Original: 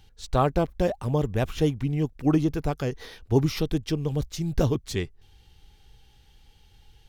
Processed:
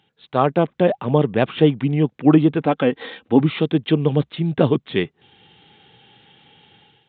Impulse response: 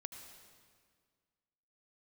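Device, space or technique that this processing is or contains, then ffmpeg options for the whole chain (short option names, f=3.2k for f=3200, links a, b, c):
Bluetooth headset: -filter_complex "[0:a]asettb=1/sr,asplit=3[a][b][c];[a]atrim=end=2.614[d];[b]atrim=start=2.61:end=3.4,asetpts=PTS-STARTPTS,afade=t=in:d=0.004:c=qsin,afade=t=out:st=0.786:d=0.004:c=qsin,aecho=1:1:3.8:0.52,atrim=end_sample=34839[e];[c]atrim=start=3.396[f];[d][e]acrossfade=d=0.004:c1=hsin:c2=qsin[g];[g][f]acrossfade=d=0.004:c1=qsin:c2=hsin,highpass=f=150:w=0.5412,highpass=f=150:w=1.3066,dynaudnorm=f=140:g=5:m=13dB,aresample=8000,aresample=44100" -ar 16000 -c:a sbc -b:a 64k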